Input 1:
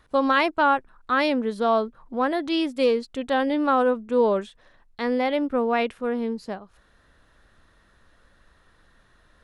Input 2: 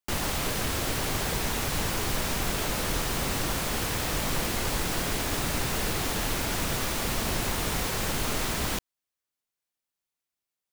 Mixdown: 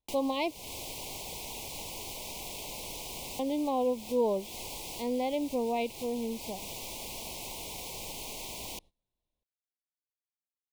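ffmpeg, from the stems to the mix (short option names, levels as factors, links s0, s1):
-filter_complex "[0:a]volume=0.422,asplit=3[s0][s1][s2];[s0]atrim=end=0.58,asetpts=PTS-STARTPTS,afade=t=out:st=0.576:d=0.004:c=hsin[s3];[s1]atrim=start=0.58:end=3.39,asetpts=PTS-STARTPTS,volume=0[s4];[s2]atrim=start=3.39,asetpts=PTS-STARTPTS,afade=t=in:d=0.004:c=hsin[s5];[s3][s4][s5]concat=n=3:v=0:a=1,asplit=2[s6][s7];[1:a]acrossover=split=330|690[s8][s9][s10];[s8]acompressor=threshold=0.00355:ratio=4[s11];[s9]acompressor=threshold=0.00316:ratio=4[s12];[s10]acompressor=threshold=0.0158:ratio=4[s13];[s11][s12][s13]amix=inputs=3:normalize=0,aeval=exprs='clip(val(0),-1,0.0178)':c=same,volume=0.794[s14];[s7]apad=whole_len=472902[s15];[s14][s15]sidechaincompress=threshold=0.0158:ratio=8:attack=10:release=259[s16];[s6][s16]amix=inputs=2:normalize=0,asuperstop=centerf=1500:order=8:qfactor=1.2,agate=range=0.0891:threshold=0.00224:ratio=16:detection=peak"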